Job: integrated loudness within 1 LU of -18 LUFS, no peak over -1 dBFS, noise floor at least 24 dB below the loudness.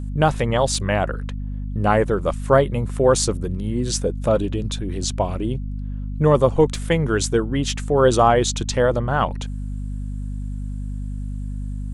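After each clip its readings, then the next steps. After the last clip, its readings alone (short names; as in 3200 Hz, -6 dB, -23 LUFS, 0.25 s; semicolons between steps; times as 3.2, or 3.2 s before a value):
dropouts 3; longest dropout 1.2 ms; hum 50 Hz; harmonics up to 250 Hz; hum level -25 dBFS; loudness -21.5 LUFS; peak -2.5 dBFS; loudness target -18.0 LUFS
-> interpolate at 0.75/5.03/6.75, 1.2 ms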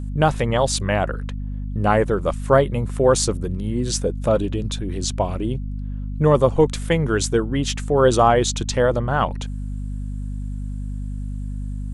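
dropouts 0; hum 50 Hz; harmonics up to 250 Hz; hum level -25 dBFS
-> notches 50/100/150/200/250 Hz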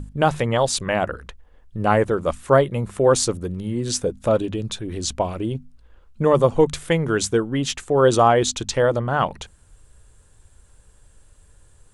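hum none; loudness -21.0 LUFS; peak -2.5 dBFS; loudness target -18.0 LUFS
-> gain +3 dB; limiter -1 dBFS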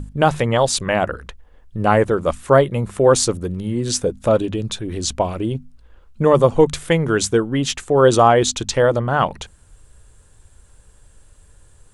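loudness -18.0 LUFS; peak -1.0 dBFS; noise floor -51 dBFS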